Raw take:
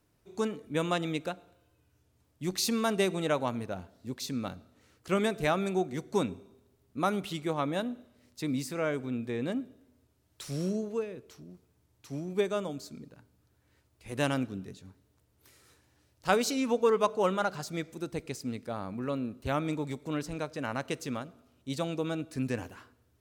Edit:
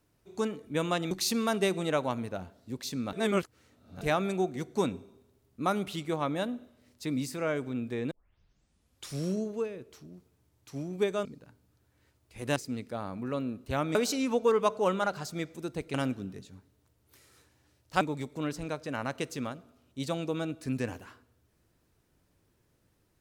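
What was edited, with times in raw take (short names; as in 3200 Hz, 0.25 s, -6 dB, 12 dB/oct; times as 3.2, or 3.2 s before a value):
1.11–2.48 cut
4.5–5.38 reverse
9.48 tape start 1.01 s
12.62–12.95 cut
14.26–16.33 swap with 18.32–19.71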